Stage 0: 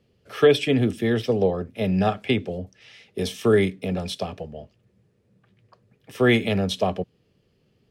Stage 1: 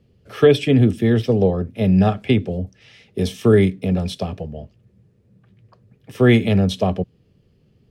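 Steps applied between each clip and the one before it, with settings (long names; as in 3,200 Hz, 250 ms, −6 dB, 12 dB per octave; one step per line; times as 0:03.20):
low-shelf EQ 280 Hz +11 dB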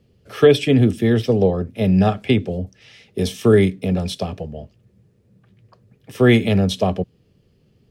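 bass and treble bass −2 dB, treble +3 dB
level +1 dB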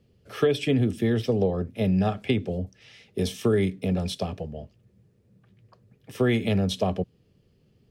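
downward compressor 3 to 1, threshold −15 dBFS, peak gain reduction 7 dB
level −4.5 dB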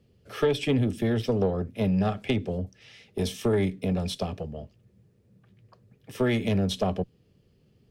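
one-sided soft clipper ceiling −18 dBFS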